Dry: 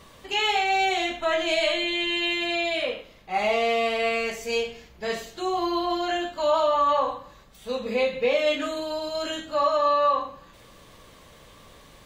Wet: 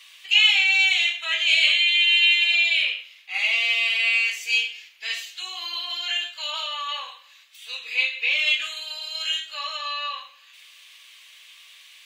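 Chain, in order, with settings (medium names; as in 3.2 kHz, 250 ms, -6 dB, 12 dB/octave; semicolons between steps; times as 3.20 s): resonant high-pass 2.6 kHz, resonance Q 2.8; trim +2.5 dB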